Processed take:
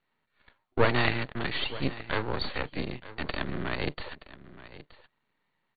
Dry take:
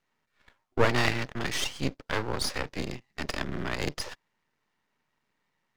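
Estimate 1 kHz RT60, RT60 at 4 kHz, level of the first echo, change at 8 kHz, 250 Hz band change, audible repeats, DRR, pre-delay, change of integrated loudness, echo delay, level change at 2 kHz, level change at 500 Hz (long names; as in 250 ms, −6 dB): no reverb audible, no reverb audible, −16.5 dB, below −40 dB, 0.0 dB, 1, no reverb audible, no reverb audible, 0.0 dB, 924 ms, 0.0 dB, 0.0 dB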